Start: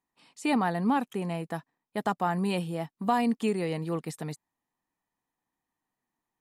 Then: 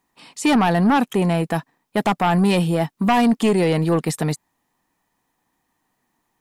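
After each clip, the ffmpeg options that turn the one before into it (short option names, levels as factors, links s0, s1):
-filter_complex "[0:a]asplit=2[s0][s1];[s1]alimiter=level_in=1.12:limit=0.0631:level=0:latency=1:release=22,volume=0.891,volume=0.75[s2];[s0][s2]amix=inputs=2:normalize=0,aeval=exprs='0.251*sin(PI/2*2*val(0)/0.251)':c=same"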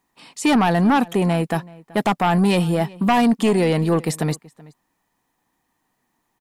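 -filter_complex "[0:a]asplit=2[s0][s1];[s1]adelay=379,volume=0.0794,highshelf=f=4000:g=-8.53[s2];[s0][s2]amix=inputs=2:normalize=0"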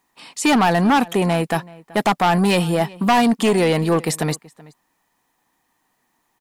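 -af "lowshelf=f=380:g=-6.5,asoftclip=type=hard:threshold=0.168,volume=1.68"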